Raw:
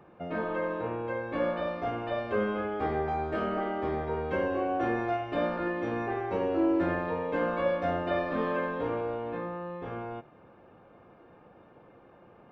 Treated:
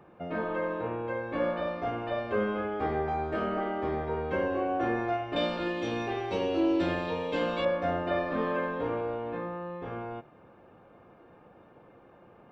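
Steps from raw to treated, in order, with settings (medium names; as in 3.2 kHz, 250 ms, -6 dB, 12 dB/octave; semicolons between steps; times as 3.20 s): 5.36–7.65 s: resonant high shelf 2.4 kHz +12 dB, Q 1.5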